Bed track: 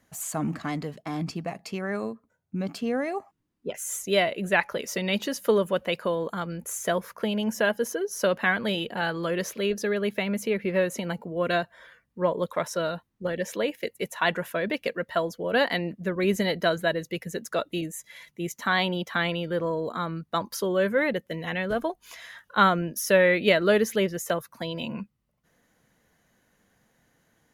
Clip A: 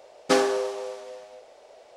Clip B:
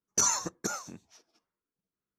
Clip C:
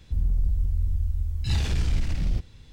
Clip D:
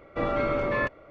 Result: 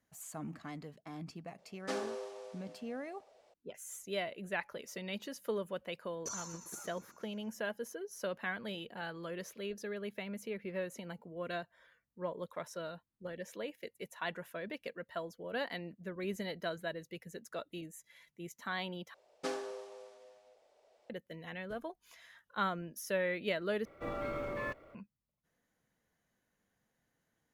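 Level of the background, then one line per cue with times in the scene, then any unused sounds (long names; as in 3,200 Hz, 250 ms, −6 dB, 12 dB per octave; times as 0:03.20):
bed track −14.5 dB
0:01.58: mix in A −18 dB + automatic gain control gain up to 4.5 dB
0:06.08: mix in B −17.5 dB + repeating echo 118 ms, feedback 60%, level −8.5 dB
0:19.14: overwrite with A −17.5 dB
0:23.85: overwrite with D −13 dB + mu-law and A-law mismatch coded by mu
not used: C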